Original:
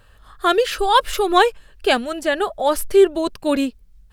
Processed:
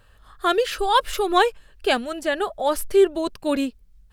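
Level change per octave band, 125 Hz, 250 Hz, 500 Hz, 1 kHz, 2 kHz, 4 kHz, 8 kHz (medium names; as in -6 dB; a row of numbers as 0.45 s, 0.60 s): no reading, -3.5 dB, -3.5 dB, -3.5 dB, -3.5 dB, -3.5 dB, -3.5 dB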